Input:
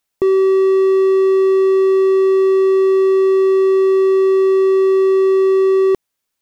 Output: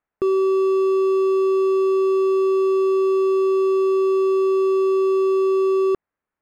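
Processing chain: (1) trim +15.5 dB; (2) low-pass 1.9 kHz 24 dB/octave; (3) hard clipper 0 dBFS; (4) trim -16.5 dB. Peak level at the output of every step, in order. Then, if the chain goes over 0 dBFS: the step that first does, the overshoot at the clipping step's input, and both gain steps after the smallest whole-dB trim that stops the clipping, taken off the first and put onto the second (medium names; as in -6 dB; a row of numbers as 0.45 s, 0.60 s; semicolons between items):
+8.0 dBFS, +7.5 dBFS, 0.0 dBFS, -16.5 dBFS; step 1, 7.5 dB; step 1 +7.5 dB, step 4 -8.5 dB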